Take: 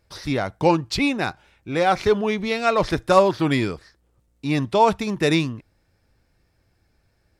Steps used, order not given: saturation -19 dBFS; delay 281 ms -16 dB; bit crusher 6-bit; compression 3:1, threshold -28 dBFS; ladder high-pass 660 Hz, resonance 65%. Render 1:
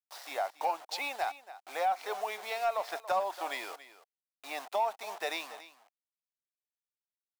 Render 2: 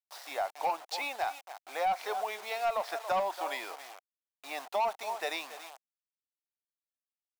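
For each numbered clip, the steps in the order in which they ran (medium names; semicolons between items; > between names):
bit crusher > ladder high-pass > compression > delay > saturation; delay > bit crusher > ladder high-pass > saturation > compression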